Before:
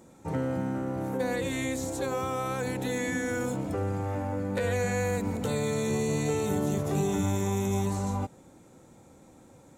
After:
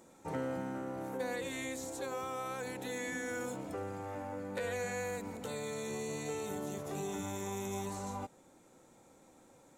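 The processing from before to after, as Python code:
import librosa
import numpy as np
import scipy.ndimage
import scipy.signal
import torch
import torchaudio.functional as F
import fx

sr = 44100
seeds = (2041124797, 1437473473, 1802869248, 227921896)

y = fx.peak_eq(x, sr, hz=85.0, db=-11.0, octaves=3.0)
y = fx.rider(y, sr, range_db=10, speed_s=2.0)
y = y * librosa.db_to_amplitude(-6.5)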